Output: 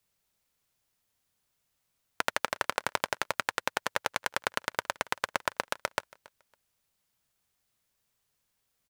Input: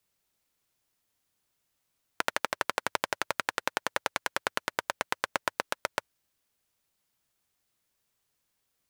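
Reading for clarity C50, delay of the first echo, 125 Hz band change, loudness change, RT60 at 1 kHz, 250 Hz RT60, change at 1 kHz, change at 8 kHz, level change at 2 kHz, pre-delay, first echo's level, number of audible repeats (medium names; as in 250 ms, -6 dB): no reverb, 278 ms, +1.5 dB, 0.0 dB, no reverb, no reverb, 0.0 dB, 0.0 dB, 0.0 dB, no reverb, -23.0 dB, 1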